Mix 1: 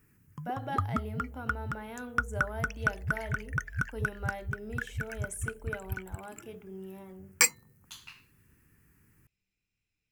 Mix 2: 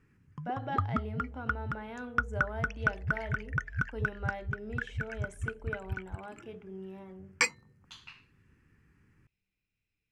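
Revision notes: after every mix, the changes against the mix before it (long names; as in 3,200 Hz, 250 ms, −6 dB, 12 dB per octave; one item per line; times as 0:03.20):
master: add low-pass filter 4,200 Hz 12 dB per octave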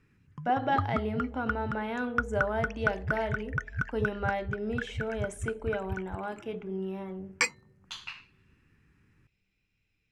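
speech +9.0 dB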